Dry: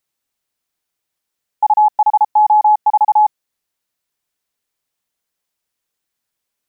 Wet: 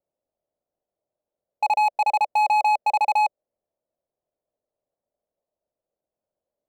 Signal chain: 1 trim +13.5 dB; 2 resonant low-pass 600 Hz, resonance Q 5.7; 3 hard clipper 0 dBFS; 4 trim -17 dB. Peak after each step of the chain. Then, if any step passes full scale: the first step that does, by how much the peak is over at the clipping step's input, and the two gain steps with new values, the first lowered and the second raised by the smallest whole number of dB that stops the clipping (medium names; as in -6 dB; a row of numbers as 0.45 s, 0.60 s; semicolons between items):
+7.0 dBFS, +7.5 dBFS, 0.0 dBFS, -17.0 dBFS; step 1, 7.5 dB; step 1 +5.5 dB, step 4 -9 dB